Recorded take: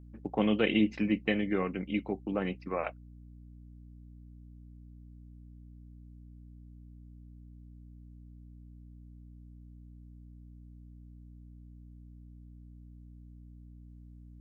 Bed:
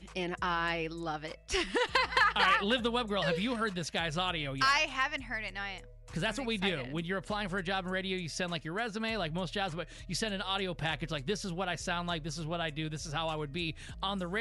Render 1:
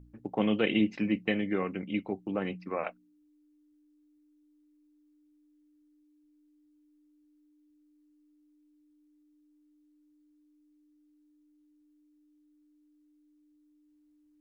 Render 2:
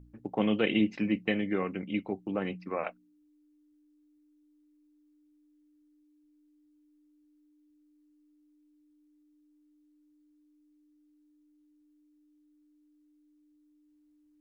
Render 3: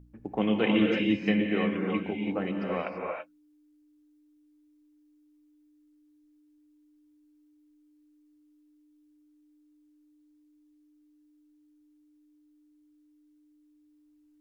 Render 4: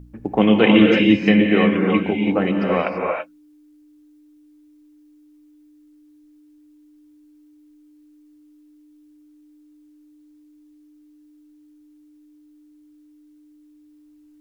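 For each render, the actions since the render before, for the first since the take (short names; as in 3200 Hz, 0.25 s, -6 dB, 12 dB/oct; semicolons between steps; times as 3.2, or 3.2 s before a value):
de-hum 60 Hz, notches 4
nothing audible
non-linear reverb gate 0.36 s rising, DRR 0 dB
gain +11.5 dB; limiter -2 dBFS, peak gain reduction 2 dB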